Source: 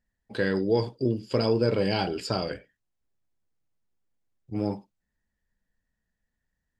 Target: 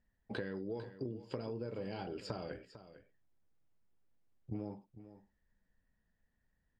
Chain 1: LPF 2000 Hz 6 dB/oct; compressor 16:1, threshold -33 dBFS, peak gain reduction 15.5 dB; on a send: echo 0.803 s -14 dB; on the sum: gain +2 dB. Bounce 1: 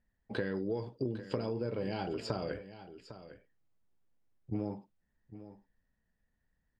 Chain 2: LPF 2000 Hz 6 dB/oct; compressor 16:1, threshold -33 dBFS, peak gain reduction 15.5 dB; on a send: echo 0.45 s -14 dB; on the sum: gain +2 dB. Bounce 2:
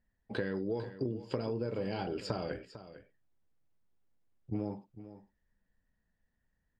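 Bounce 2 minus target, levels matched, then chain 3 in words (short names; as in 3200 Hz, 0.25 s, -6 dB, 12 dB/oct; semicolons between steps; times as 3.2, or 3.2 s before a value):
compressor: peak gain reduction -6 dB
LPF 2000 Hz 6 dB/oct; compressor 16:1, threshold -39.5 dBFS, peak gain reduction 21.5 dB; on a send: echo 0.45 s -14 dB; on the sum: gain +2 dB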